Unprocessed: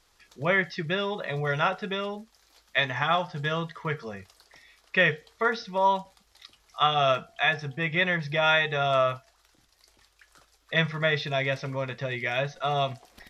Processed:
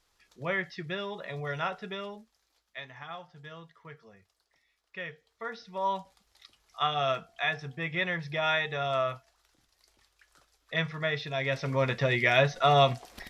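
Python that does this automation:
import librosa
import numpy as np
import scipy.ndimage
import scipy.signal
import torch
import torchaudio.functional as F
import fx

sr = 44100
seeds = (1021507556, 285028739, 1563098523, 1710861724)

y = fx.gain(x, sr, db=fx.line((2.05, -7.0), (2.81, -17.5), (5.12, -17.5), (5.99, -5.5), (11.33, -5.5), (11.85, 5.0)))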